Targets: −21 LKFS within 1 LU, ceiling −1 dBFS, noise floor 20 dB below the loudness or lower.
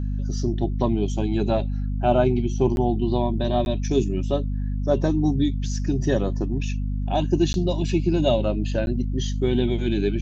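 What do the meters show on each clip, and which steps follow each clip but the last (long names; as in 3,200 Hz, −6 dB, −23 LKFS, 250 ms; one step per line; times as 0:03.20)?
number of dropouts 4; longest dropout 11 ms; mains hum 50 Hz; hum harmonics up to 250 Hz; level of the hum −23 dBFS; integrated loudness −23.5 LKFS; sample peak −7.0 dBFS; target loudness −21.0 LKFS
→ repair the gap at 0:02.76/0:03.65/0:07.53/0:08.86, 11 ms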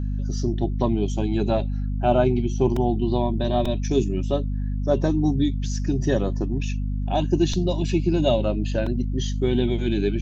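number of dropouts 0; mains hum 50 Hz; hum harmonics up to 250 Hz; level of the hum −23 dBFS
→ mains-hum notches 50/100/150/200/250 Hz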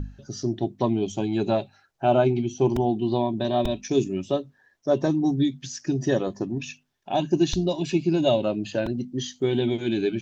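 mains hum none found; integrated loudness −25.0 LKFS; sample peak −8.5 dBFS; target loudness −21.0 LKFS
→ level +4 dB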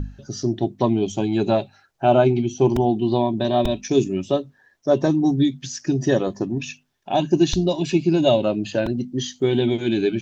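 integrated loudness −21.0 LKFS; sample peak −4.5 dBFS; background noise floor −62 dBFS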